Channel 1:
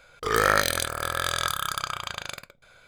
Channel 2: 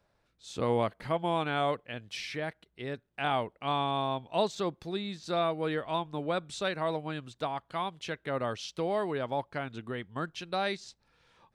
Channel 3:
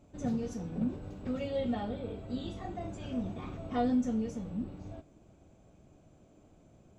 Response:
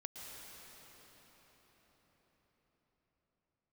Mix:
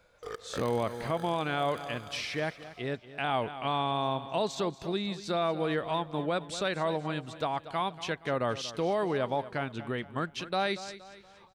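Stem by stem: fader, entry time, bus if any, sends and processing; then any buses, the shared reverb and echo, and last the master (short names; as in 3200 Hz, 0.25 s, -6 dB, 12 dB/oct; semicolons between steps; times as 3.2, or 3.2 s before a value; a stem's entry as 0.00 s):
-15.5 dB, 0.00 s, send -4.5 dB, no echo send, bell 500 Hz +11.5 dB 0.43 oct; step gate "xx.xx.xx.x" 85 bpm -24 dB; auto duck -16 dB, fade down 0.80 s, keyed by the second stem
+3.0 dB, 0.00 s, no send, echo send -15.5 dB, dry
-11.5 dB, 0.00 s, no send, no echo send, elliptic high-pass 610 Hz; LPF 4800 Hz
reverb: on, RT60 5.8 s, pre-delay 0.107 s
echo: feedback echo 0.235 s, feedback 42%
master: limiter -20 dBFS, peak gain reduction 7.5 dB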